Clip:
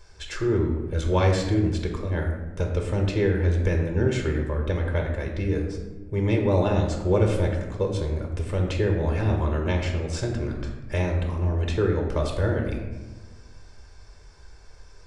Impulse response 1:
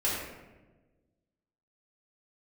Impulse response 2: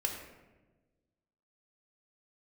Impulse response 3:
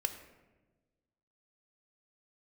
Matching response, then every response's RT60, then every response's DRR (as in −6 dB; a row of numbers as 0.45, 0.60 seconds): 2; 1.2, 1.2, 1.2 seconds; −8.0, 1.5, 7.5 decibels